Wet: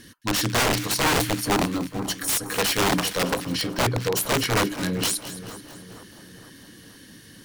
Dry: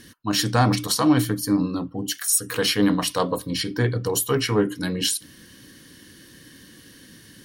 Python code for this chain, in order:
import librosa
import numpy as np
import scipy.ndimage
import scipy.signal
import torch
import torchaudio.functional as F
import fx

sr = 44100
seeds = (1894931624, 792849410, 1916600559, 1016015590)

y = (np.mod(10.0 ** (15.5 / 20.0) * x + 1.0, 2.0) - 1.0) / 10.0 ** (15.5 / 20.0)
y = fx.echo_split(y, sr, split_hz=1500.0, low_ms=465, high_ms=217, feedback_pct=52, wet_db=-13.5)
y = fx.doppler_dist(y, sr, depth_ms=0.11)